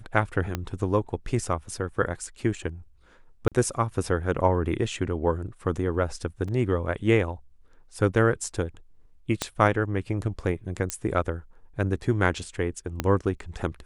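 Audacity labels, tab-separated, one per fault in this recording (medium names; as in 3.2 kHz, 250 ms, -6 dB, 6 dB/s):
0.550000	0.550000	pop -13 dBFS
3.480000	3.520000	dropout 37 ms
6.480000	6.480000	dropout 4.3 ms
9.420000	9.420000	pop -10 dBFS
10.900000	10.900000	pop -11 dBFS
13.000000	13.000000	pop -10 dBFS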